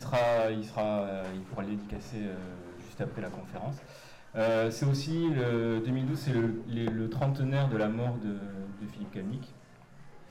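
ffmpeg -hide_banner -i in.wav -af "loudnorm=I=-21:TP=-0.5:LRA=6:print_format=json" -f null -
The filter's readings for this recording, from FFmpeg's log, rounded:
"input_i" : "-32.5",
"input_tp" : "-23.2",
"input_lra" : "4.3",
"input_thresh" : "-43.1",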